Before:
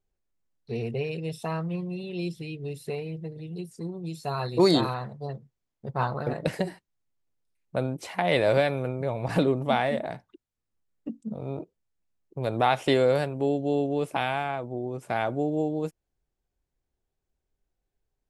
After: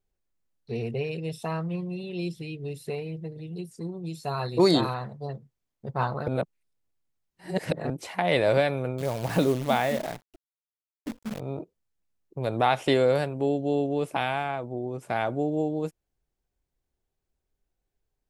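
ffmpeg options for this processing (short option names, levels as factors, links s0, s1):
-filter_complex "[0:a]asettb=1/sr,asplit=3[s0][s1][s2];[s0]atrim=end=8.984[s3];[s1]atrim=start=8.98:end=11.4,asetpts=PTS-STARTPTS,afade=t=in:d=0.004:c=qsin,afade=t=out:st=2.416:d=0.004:c=qsin,acrusher=bits=7:dc=4:mix=0:aa=0.000001[s4];[s2]atrim=start=11.396[s5];[s3][s4]acrossfade=d=0.004:c1=hsin:c2=qsin[s6];[s6][s5]acrossfade=d=0.004:c1=qsin:c2=hsin,asplit=3[s7][s8][s9];[s7]atrim=end=6.282[s10];[s8]atrim=start=6.278:end=7.902,asetpts=PTS-STARTPTS,areverse[s11];[s9]atrim=start=7.898[s12];[s10][s11]acrossfade=d=0.004:c1=hsin:c2=hsin[s13];[s13][s12]acrossfade=d=0.004:c1=hsin:c2=hsin"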